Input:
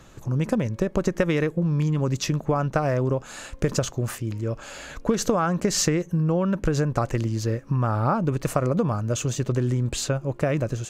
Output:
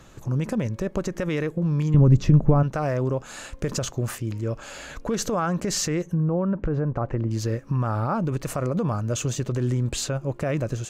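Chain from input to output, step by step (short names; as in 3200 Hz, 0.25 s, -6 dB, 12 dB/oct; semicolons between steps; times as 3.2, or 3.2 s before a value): 6.03–7.31 treble ducked by the level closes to 1200 Hz, closed at -20.5 dBFS; limiter -16 dBFS, peak gain reduction 9.5 dB; 1.94–2.63 tilt -4 dB/oct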